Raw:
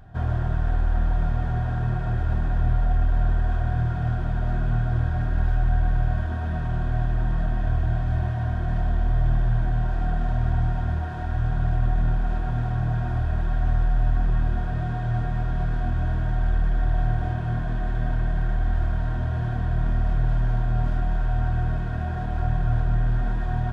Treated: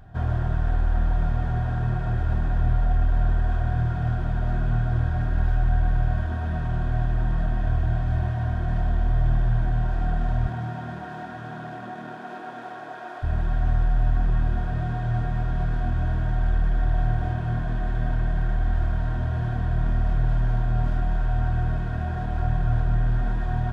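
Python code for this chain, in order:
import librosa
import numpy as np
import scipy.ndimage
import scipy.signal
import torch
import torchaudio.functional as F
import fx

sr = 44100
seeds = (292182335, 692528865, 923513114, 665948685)

y = fx.highpass(x, sr, hz=fx.line((10.47, 120.0), (13.22, 370.0)), slope=24, at=(10.47, 13.22), fade=0.02)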